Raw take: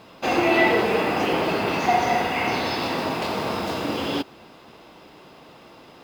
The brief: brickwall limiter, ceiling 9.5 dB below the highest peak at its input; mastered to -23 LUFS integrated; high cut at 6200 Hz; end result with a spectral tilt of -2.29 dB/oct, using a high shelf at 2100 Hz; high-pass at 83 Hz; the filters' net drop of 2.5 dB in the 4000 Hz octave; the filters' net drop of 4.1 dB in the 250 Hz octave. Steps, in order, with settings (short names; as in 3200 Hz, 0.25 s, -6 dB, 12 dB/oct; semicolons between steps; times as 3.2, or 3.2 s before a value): HPF 83 Hz; LPF 6200 Hz; bell 250 Hz -6 dB; high shelf 2100 Hz +4.5 dB; bell 4000 Hz -7.5 dB; gain +2 dB; limiter -13 dBFS